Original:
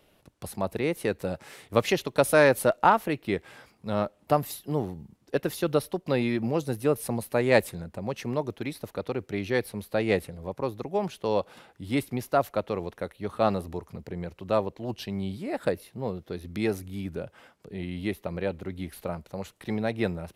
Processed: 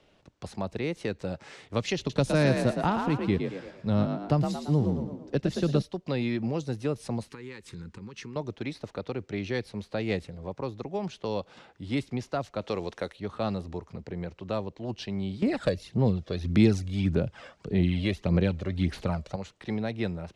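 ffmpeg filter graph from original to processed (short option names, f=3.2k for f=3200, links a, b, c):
-filter_complex "[0:a]asettb=1/sr,asplit=3[a][b][c];[a]atrim=end=1.984[d];[b]atrim=start=1.98:end=5.82,asetpts=PTS-STARTPTS,afade=t=in:d=0.004:c=qsin,afade=t=out:st=3.836:d=0.004:c=qsin,lowshelf=f=380:g=9,asplit=6[e][f][g][h][i][j];[f]adelay=113,afreqshift=45,volume=-6dB[k];[g]adelay=226,afreqshift=90,volume=-14.4dB[l];[h]adelay=339,afreqshift=135,volume=-22.8dB[m];[i]adelay=452,afreqshift=180,volume=-31.2dB[n];[j]adelay=565,afreqshift=225,volume=-39.6dB[o];[e][k][l][m][n][o]amix=inputs=6:normalize=0,atrim=end_sample=169344[p];[c]atrim=start=5.816[q];[d][p]acrossfade=d=0.004:c1=hsin:c2=qsin[r];[r][q]acrossfade=d=0.004:c1=qsin:c2=hsin,asettb=1/sr,asplit=3[s][t][u];[s]atrim=end=7.284[v];[t]atrim=start=7.28:end=8.36,asetpts=PTS-STARTPTS,afade=t=in:d=0.004:c=qsin,afade=t=out:st=1.076:d=0.004:c=qsin,highshelf=f=5.2k:g=5,acompressor=threshold=-36dB:ratio=8:attack=3.2:release=140:knee=1:detection=peak,asuperstop=centerf=650:order=4:qfactor=1.3[w];[u]atrim=start=8.356[x];[v][w]acrossfade=d=0.004:c1=hsin:c2=qsin[y];[y][x]acrossfade=d=0.004:c1=qsin:c2=hsin,asettb=1/sr,asplit=3[z][aa][ab];[z]atrim=end=12.614[ac];[aa]atrim=start=12.61:end=13.2,asetpts=PTS-STARTPTS,afade=t=in:d=0.004:c=qsin,afade=t=out:st=0.586:d=0.004:c=qsin,acontrast=61,bass=f=250:g=-8,treble=f=4k:g=5[ad];[ab]atrim=start=13.196[ae];[ac][ad]acrossfade=d=0.004:c1=hsin:c2=qsin[af];[af][ae]acrossfade=d=0.004:c1=qsin:c2=hsin,asettb=1/sr,asplit=3[ag][ah][ai];[ag]atrim=end=15.424[aj];[ah]atrim=start=15.42:end=19.36,asetpts=PTS-STARTPTS,afade=t=in:d=0.004:c=qsin,afade=t=out:st=3.936:d=0.004:c=qsin,acontrast=76,aphaser=in_gain=1:out_gain=1:delay=1.8:decay=0.53:speed=1.7:type=sinusoidal[ak];[ai]atrim=start=19.356[al];[aj][ak]acrossfade=d=0.004:c1=hsin:c2=qsin[am];[am][al]acrossfade=d=0.004:c1=qsin:c2=hsin,lowpass=f=7k:w=0.5412,lowpass=f=7k:w=1.3066,acrossover=split=250|3000[an][ao][ap];[ao]acompressor=threshold=-35dB:ratio=2[aq];[an][aq][ap]amix=inputs=3:normalize=0"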